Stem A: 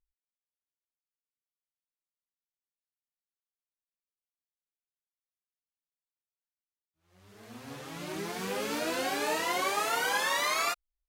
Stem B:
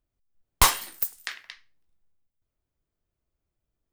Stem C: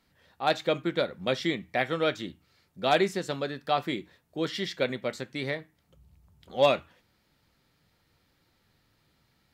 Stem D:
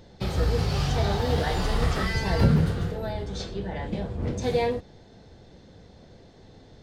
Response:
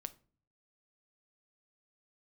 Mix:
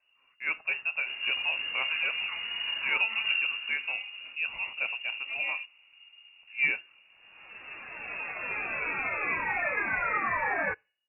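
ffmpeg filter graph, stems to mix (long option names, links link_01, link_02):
-filter_complex "[0:a]aemphasis=mode=production:type=75kf,volume=-2dB,asplit=2[link_01][link_02];[link_02]volume=-10dB[link_03];[1:a]acompressor=threshold=-27dB:ratio=4,adelay=100,volume=-17dB[link_04];[2:a]lowshelf=frequency=320:gain=10.5,volume=-8dB[link_05];[3:a]adelay=850,volume=-10.5dB[link_06];[4:a]atrim=start_sample=2205[link_07];[link_03][link_07]afir=irnorm=-1:irlink=0[link_08];[link_01][link_04][link_05][link_06][link_08]amix=inputs=5:normalize=0,lowpass=frequency=2500:width_type=q:width=0.5098,lowpass=frequency=2500:width_type=q:width=0.6013,lowpass=frequency=2500:width_type=q:width=0.9,lowpass=frequency=2500:width_type=q:width=2.563,afreqshift=-2900"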